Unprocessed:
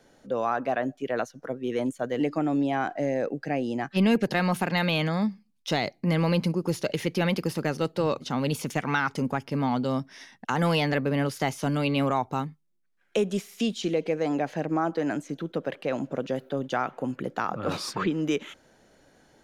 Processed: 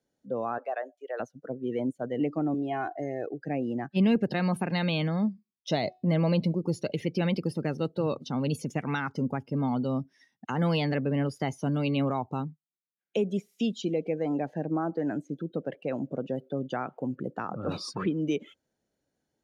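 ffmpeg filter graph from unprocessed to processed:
-filter_complex "[0:a]asettb=1/sr,asplit=3[a][b][c];[a]atrim=end=0.584[d];[b]atrim=start=0.58:end=1.2,asetpts=PTS-STARTPTS,afade=t=in:d=0.004:c=qsin,afade=t=out:st=0.616:d=0.004:c=qsin,highpass=f=480:w=0.5412,highpass=f=480:w=1.3066,bandreject=f=1k:w=16[e];[c]atrim=start=1.196[f];[d][e]acrossfade=d=0.004:c1=hsin:c2=qsin[g];[g][f]acrossfade=d=0.004:c1=qsin:c2=hsin,asettb=1/sr,asplit=3[h][i][j];[h]atrim=end=2.544[k];[i]atrim=start=2.54:end=3.41,asetpts=PTS-STARTPTS,afade=t=in:d=0.004:c=qsin,afade=t=out:st=0.866:d=0.004:c=qsin,equalizer=f=250:w=2.2:g=-9,aecho=1:1:2.8:0.56,atrim=end_sample=38367[l];[j]atrim=start=3.406[m];[k][l]acrossfade=d=0.004:c1=hsin:c2=qsin[n];[n][m]acrossfade=d=0.004:c1=qsin:c2=hsin,asettb=1/sr,asplit=3[o][p][q];[o]atrim=end=5.244[r];[p]atrim=start=5.24:end=6.61,asetpts=PTS-STARTPTS,afade=t=in:d=0.004:c=qsin,afade=t=out:st=1.366:d=0.004:c=qsin,equalizer=f=630:w=5:g=8,bandreject=f=368.3:t=h:w=4,bandreject=f=736.6:t=h:w=4,bandreject=f=1.1049k:t=h:w=4,bandreject=f=1.4732k:t=h:w=4,bandreject=f=1.8415k:t=h:w=4,bandreject=f=2.2098k:t=h:w=4,bandreject=f=2.5781k:t=h:w=4,bandreject=f=2.9464k:t=h:w=4,bandreject=f=3.3147k:t=h:w=4,bandreject=f=3.683k:t=h:w=4,bandreject=f=4.0513k:t=h:w=4,bandreject=f=4.4196k:t=h:w=4,bandreject=f=4.7879k:t=h:w=4,bandreject=f=5.1562k:t=h:w=4,bandreject=f=5.5245k:t=h:w=4,bandreject=f=5.8928k:t=h:w=4,bandreject=f=6.2611k:t=h:w=4,bandreject=f=6.6294k:t=h:w=4,bandreject=f=6.9977k:t=h:w=4,bandreject=f=7.366k:t=h:w=4,bandreject=f=7.7343k:t=h:w=4,bandreject=f=8.1026k:t=h:w=4,bandreject=f=8.4709k:t=h:w=4,bandreject=f=8.8392k:t=h:w=4,bandreject=f=9.2075k:t=h:w=4,bandreject=f=9.5758k:t=h:w=4,bandreject=f=9.9441k:t=h:w=4,bandreject=f=10.3124k:t=h:w=4,bandreject=f=10.6807k:t=h:w=4,bandreject=f=11.049k:t=h:w=4,bandreject=f=11.4173k:t=h:w=4,bandreject=f=11.7856k:t=h:w=4,bandreject=f=12.1539k:t=h:w=4,bandreject=f=12.5222k:t=h:w=4,bandreject=f=12.8905k:t=h:w=4,bandreject=f=13.2588k:t=h:w=4,bandreject=f=13.6271k:t=h:w=4,bandreject=f=13.9954k:t=h:w=4[s];[q]atrim=start=6.606[t];[r][s]acrossfade=d=0.004:c1=hsin:c2=qsin[u];[u][t]acrossfade=d=0.004:c1=qsin:c2=hsin,highpass=42,afftdn=nr=19:nf=-38,equalizer=f=1.4k:t=o:w=2.8:g=-7"

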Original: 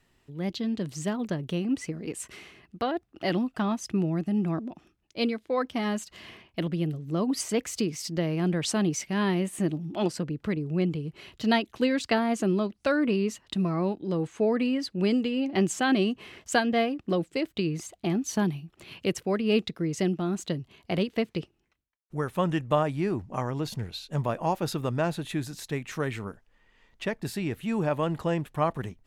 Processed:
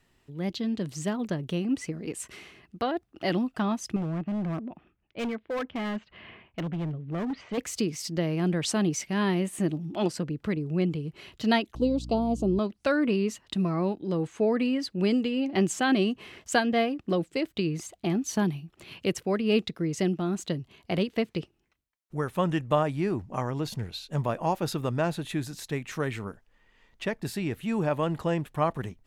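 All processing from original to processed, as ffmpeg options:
-filter_complex "[0:a]asettb=1/sr,asplit=3[a][b][c];[a]atrim=end=3.964[d];[b]atrim=start=3.96:end=7.58,asetpts=PTS-STARTPTS,afade=t=in:d=0.004:c=qsin,afade=t=out:st=3.616:d=0.004:c=qsin,lowpass=f=2.9k:w=0.5412,lowpass=f=2.9k:w=1.3066,equalizer=f=320:w=2.8:g=-3.5,asoftclip=type=hard:threshold=-27.5dB[e];[c]atrim=start=7.576[f];[d][e]acrossfade=d=0.004:c1=hsin:c2=qsin[g];[g][f]acrossfade=d=0.004:c1=qsin:c2=hsin,asettb=1/sr,asplit=3[h][i][j];[h]atrim=end=11.754[k];[i]atrim=start=11.75:end=12.59,asetpts=PTS-STARTPTS,afade=t=in:d=0.004:c=qsin,afade=t=out:st=0.836:d=0.004:c=qsin,highshelf=f=4.4k:g=-11.5,aeval=exprs='val(0)+0.0141*(sin(2*PI*60*n/s)+sin(2*PI*2*60*n/s)/2+sin(2*PI*3*60*n/s)/3+sin(2*PI*4*60*n/s)/4+sin(2*PI*5*60*n/s)/5)':c=same,asuperstop=centerf=1800:order=4:qfactor=0.62[l];[j]atrim=start=12.586[m];[k][l]acrossfade=d=0.004:c1=hsin:c2=qsin[n];[n][m]acrossfade=d=0.004:c1=qsin:c2=hsin"

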